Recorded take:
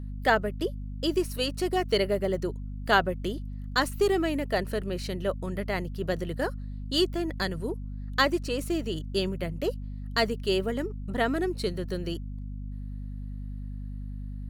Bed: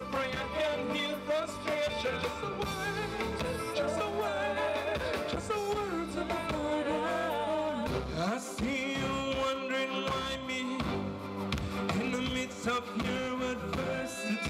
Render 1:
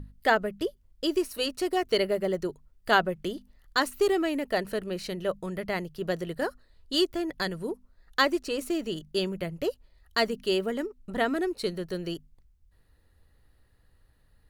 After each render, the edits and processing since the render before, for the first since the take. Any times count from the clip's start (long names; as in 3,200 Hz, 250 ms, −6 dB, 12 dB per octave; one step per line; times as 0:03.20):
mains-hum notches 50/100/150/200/250 Hz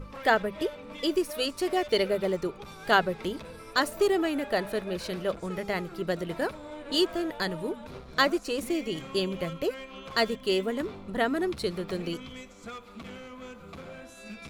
mix in bed −10 dB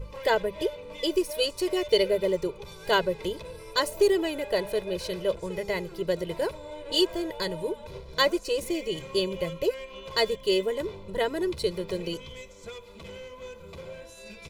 parametric band 1,400 Hz −9 dB 0.65 octaves
comb filter 2 ms, depth 78%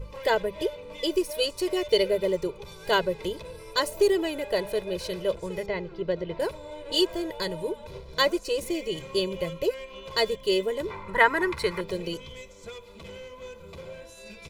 0:05.66–0:06.40: high-frequency loss of the air 210 metres
0:10.90–0:11.81: flat-topped bell 1,400 Hz +15 dB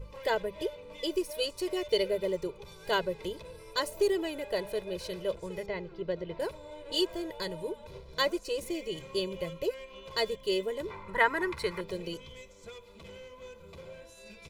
level −5.5 dB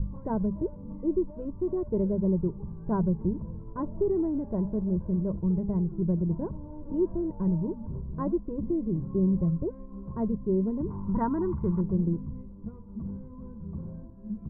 Butterworth low-pass 1,100 Hz 36 dB per octave
low shelf with overshoot 340 Hz +13.5 dB, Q 3